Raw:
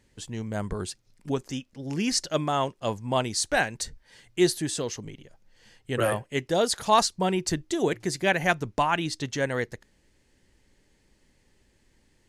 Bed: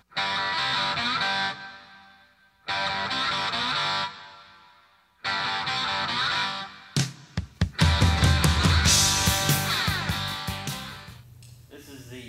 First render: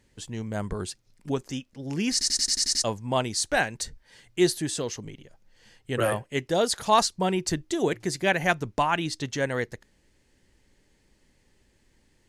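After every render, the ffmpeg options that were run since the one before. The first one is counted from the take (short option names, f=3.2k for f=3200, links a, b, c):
-filter_complex "[0:a]asplit=9[a][b][c][d][e][f][g][h][i];[a]atrim=end=2.212[j];[b]atrim=start=2.118:end=2.212[k];[c]atrim=start=2.118:end=2.212[l];[d]atrim=start=2.118:end=2.212[m];[e]atrim=start=2.118:end=2.212[n];[f]atrim=start=2.118:end=2.212[o];[g]atrim=start=2.118:end=2.212[p];[h]atrim=start=2.118:end=2.212[q];[i]atrim=start=2.838[r];[j][k]acrossfade=d=0.004:c1=hsin:c2=hsin[s];[s][l]acrossfade=d=0.004:c1=hsin:c2=hsin[t];[t][m]acrossfade=d=0.004:c1=hsin:c2=hsin[u];[u][n]acrossfade=d=0.004:c1=hsin:c2=hsin[v];[v][o]acrossfade=d=0.004:c1=hsin:c2=hsin[w];[w][p]acrossfade=d=0.004:c1=hsin:c2=hsin[x];[x][q]acrossfade=d=0.004:c1=hsin:c2=hsin[y];[y][r]acrossfade=d=0.004:c1=hsin:c2=hsin"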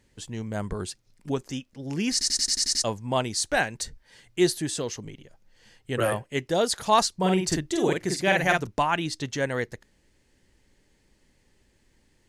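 -filter_complex "[0:a]asettb=1/sr,asplit=3[a][b][c];[a]atrim=end=7.184[d];[b]atrim=start=7.18:end=8.67,asetpts=PTS-STARTPTS,afade=t=in:d=0.004:c=qsin,afade=t=out:st=1.486:d=0.004:c=qsin,asplit=2[e][f];[f]adelay=48,volume=-2.5dB[g];[e][g]amix=inputs=2:normalize=0,atrim=end_sample=65709[h];[c]atrim=start=8.666[i];[d][h]acrossfade=d=0.004:c1=hsin:c2=qsin[j];[j][i]acrossfade=d=0.004:c1=qsin:c2=hsin"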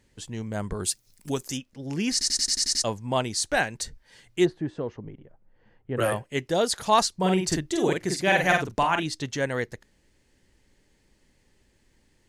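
-filter_complex "[0:a]asplit=3[a][b][c];[a]afade=t=out:st=0.83:d=0.02[d];[b]aemphasis=mode=production:type=75fm,afade=t=in:st=0.83:d=0.02,afade=t=out:st=1.56:d=0.02[e];[c]afade=t=in:st=1.56:d=0.02[f];[d][e][f]amix=inputs=3:normalize=0,asplit=3[g][h][i];[g]afade=t=out:st=4.44:d=0.02[j];[h]lowpass=1.2k,afade=t=in:st=4.44:d=0.02,afade=t=out:st=5.96:d=0.02[k];[i]afade=t=in:st=5.96:d=0.02[l];[j][k][l]amix=inputs=3:normalize=0,asettb=1/sr,asplit=3[m][n][o];[m]atrim=end=8.254[p];[n]atrim=start=8.25:end=9.03,asetpts=PTS-STARTPTS,afade=t=in:d=0.004:c=qsin,afade=t=out:st=0.776:d=0.004:c=qsin,asplit=2[q][r];[r]adelay=44,volume=-6.5dB[s];[q][s]amix=inputs=2:normalize=0,atrim=end_sample=34398[t];[o]atrim=start=9.026[u];[p][t]acrossfade=d=0.004:c1=hsin:c2=qsin[v];[v][u]acrossfade=d=0.004:c1=qsin:c2=hsin"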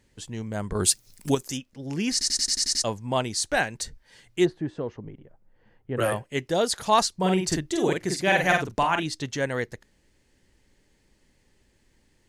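-filter_complex "[0:a]asettb=1/sr,asplit=3[a][b][c];[a]atrim=end=0.754[d];[b]atrim=start=0.75:end=1.35,asetpts=PTS-STARTPTS,afade=t=in:d=0.004:c=qsin,afade=t=out:st=0.596:d=0.004:c=qsin,acontrast=66[e];[c]atrim=start=1.346[f];[d][e]acrossfade=d=0.004:c1=hsin:c2=qsin[g];[g][f]acrossfade=d=0.004:c1=qsin:c2=hsin"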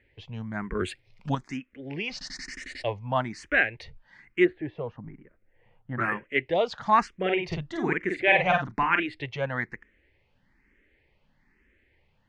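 -filter_complex "[0:a]lowpass=f=2.2k:t=q:w=2.7,asplit=2[a][b];[b]afreqshift=1.1[c];[a][c]amix=inputs=2:normalize=1"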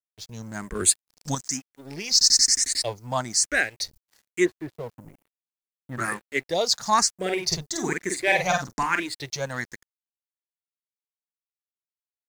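-af "aexciter=amount=12:drive=9.9:freq=4.7k,aeval=exprs='sgn(val(0))*max(abs(val(0))-0.00562,0)':c=same"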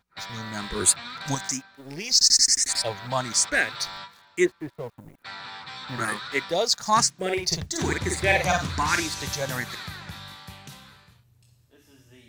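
-filter_complex "[1:a]volume=-11.5dB[a];[0:a][a]amix=inputs=2:normalize=0"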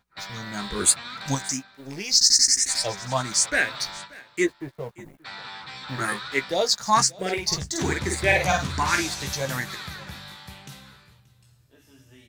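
-filter_complex "[0:a]asplit=2[a][b];[b]adelay=15,volume=-7.5dB[c];[a][c]amix=inputs=2:normalize=0,aecho=1:1:580:0.075"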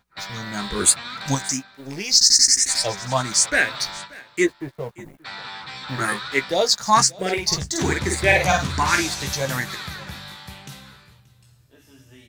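-af "volume=3.5dB,alimiter=limit=-2dB:level=0:latency=1"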